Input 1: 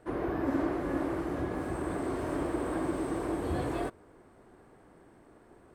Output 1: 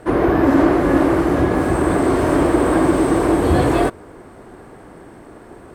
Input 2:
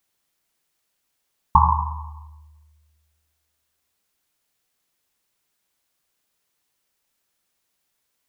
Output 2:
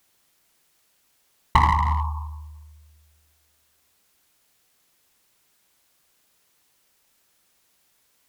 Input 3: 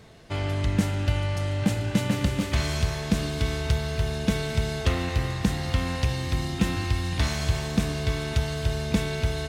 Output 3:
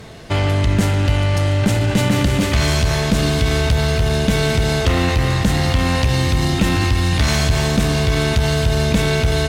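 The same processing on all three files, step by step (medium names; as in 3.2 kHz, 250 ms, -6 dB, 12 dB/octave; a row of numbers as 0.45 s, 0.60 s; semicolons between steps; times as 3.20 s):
in parallel at -3 dB: compressor with a negative ratio -29 dBFS, ratio -1; on the sum: one-sided clip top -20 dBFS; peak normalisation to -3 dBFS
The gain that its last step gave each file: +12.5 dB, +1.0 dB, +7.0 dB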